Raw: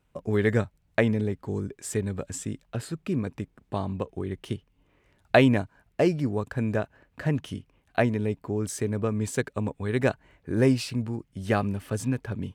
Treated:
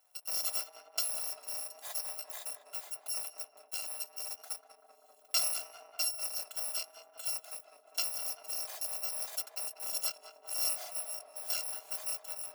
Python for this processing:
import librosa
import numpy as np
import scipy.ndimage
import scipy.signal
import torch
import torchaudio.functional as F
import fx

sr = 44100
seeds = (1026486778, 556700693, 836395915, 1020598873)

y = fx.bit_reversed(x, sr, seeds[0], block=256)
y = fx.dynamic_eq(y, sr, hz=5000.0, q=2.8, threshold_db=-39.0, ratio=4.0, max_db=4)
y = fx.ladder_highpass(y, sr, hz=610.0, resonance_pct=65)
y = fx.echo_tape(y, sr, ms=196, feedback_pct=88, wet_db=-6.0, lp_hz=1100.0, drive_db=15.0, wow_cents=30)
y = fx.band_squash(y, sr, depth_pct=40)